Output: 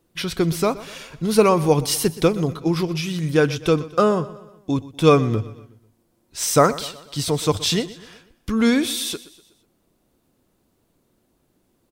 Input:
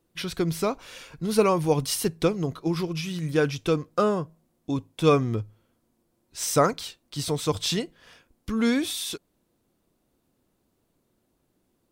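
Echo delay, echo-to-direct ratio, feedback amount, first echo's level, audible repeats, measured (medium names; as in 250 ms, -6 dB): 123 ms, -17.0 dB, 49%, -18.0 dB, 3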